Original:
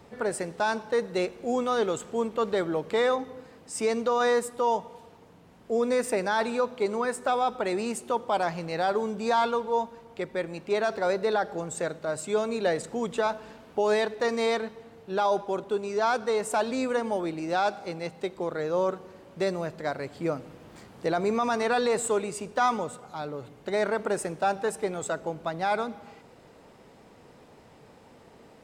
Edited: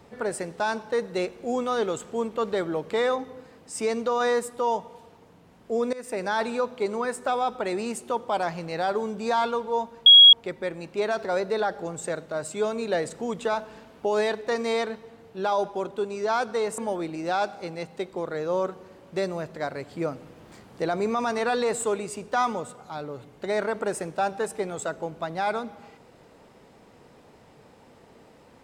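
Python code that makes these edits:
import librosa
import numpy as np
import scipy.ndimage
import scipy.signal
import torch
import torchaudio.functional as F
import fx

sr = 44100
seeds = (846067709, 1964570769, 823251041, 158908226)

y = fx.edit(x, sr, fx.fade_in_from(start_s=5.93, length_s=0.36, floor_db=-19.5),
    fx.insert_tone(at_s=10.06, length_s=0.27, hz=3310.0, db=-7.5),
    fx.cut(start_s=16.51, length_s=0.51), tone=tone)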